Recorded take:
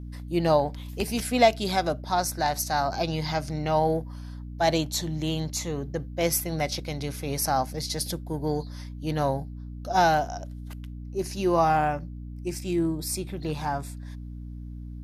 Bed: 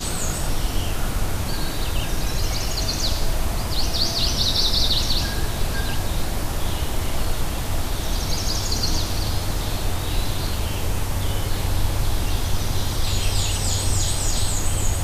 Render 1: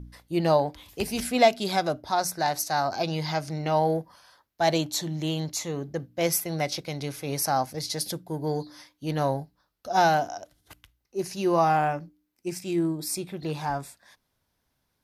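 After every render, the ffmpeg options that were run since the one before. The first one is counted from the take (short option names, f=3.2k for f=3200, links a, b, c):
-af "bandreject=f=60:t=h:w=4,bandreject=f=120:t=h:w=4,bandreject=f=180:t=h:w=4,bandreject=f=240:t=h:w=4,bandreject=f=300:t=h:w=4"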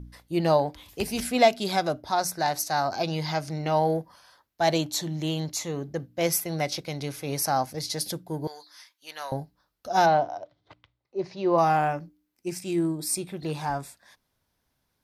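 -filter_complex "[0:a]asettb=1/sr,asplit=3[a][b][c];[a]atrim=end=8.474[d];[b]atrim=start=8.47:end=9.32,asetpts=PTS-STARTPTS,afade=t=in:d=0.004:c=qsin,afade=t=out:st=0.846:d=0.004:c=qsin,highpass=1.3k[e];[c]atrim=start=9.316[f];[d][e]acrossfade=d=0.004:c1=hsin:c2=qsin[g];[g][f]acrossfade=d=0.004:c1=qsin:c2=hsin,asplit=3[h][i][j];[h]afade=t=out:st=10.05:d=0.02[k];[i]highpass=110,equalizer=f=120:t=q:w=4:g=4,equalizer=f=220:t=q:w=4:g=-8,equalizer=f=580:t=q:w=4:g=5,equalizer=f=970:t=q:w=4:g=3,equalizer=f=1.6k:t=q:w=4:g=-6,equalizer=f=2.8k:t=q:w=4:g=-7,lowpass=f=3.9k:w=0.5412,lowpass=f=3.9k:w=1.3066,afade=t=in:st=10.05:d=0.02,afade=t=out:st=11.57:d=0.02[l];[j]afade=t=in:st=11.57:d=0.02[m];[k][l][m]amix=inputs=3:normalize=0,asettb=1/sr,asplit=3[n][o][p];[n]atrim=end=12.584[q];[o]atrim=start=12.58:end=13.82,asetpts=PTS-STARTPTS,afade=t=in:d=0.004:c=qsin,afade=t=out:st=1.236:d=0.004:c=qsin,equalizer=f=8.7k:t=o:w=0.23:g=6[r];[p]atrim=start=13.816[s];[q][r]acrossfade=d=0.004:c1=hsin:c2=qsin[t];[t][s]acrossfade=d=0.004:c1=qsin:c2=hsin"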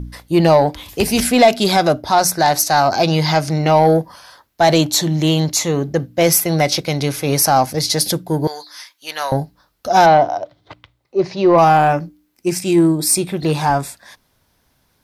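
-filter_complex "[0:a]asplit=2[a][b];[b]alimiter=limit=-17.5dB:level=0:latency=1:release=20,volume=2dB[c];[a][c]amix=inputs=2:normalize=0,acontrast=73"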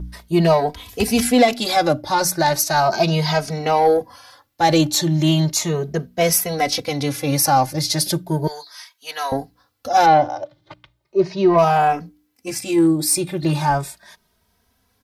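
-filter_complex "[0:a]asplit=2[a][b];[b]adelay=2.8,afreqshift=0.36[c];[a][c]amix=inputs=2:normalize=1"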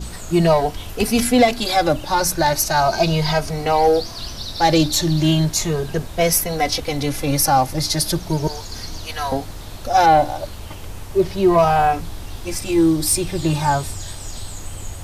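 -filter_complex "[1:a]volume=-9.5dB[a];[0:a][a]amix=inputs=2:normalize=0"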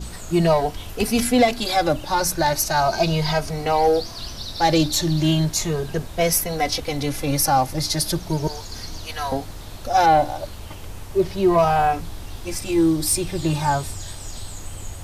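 -af "volume=-2.5dB"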